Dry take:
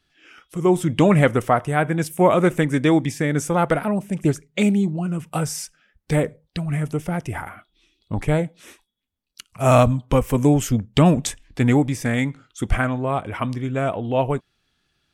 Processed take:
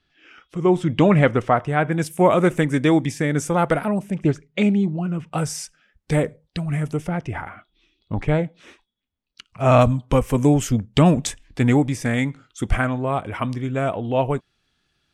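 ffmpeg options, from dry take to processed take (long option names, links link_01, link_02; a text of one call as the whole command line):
ffmpeg -i in.wav -af "asetnsamples=nb_out_samples=441:pad=0,asendcmd='1.92 lowpass f 11000;4.11 lowpass f 4100;5.38 lowpass f 10000;7.08 lowpass f 4200;9.81 lowpass f 11000',lowpass=4700" out.wav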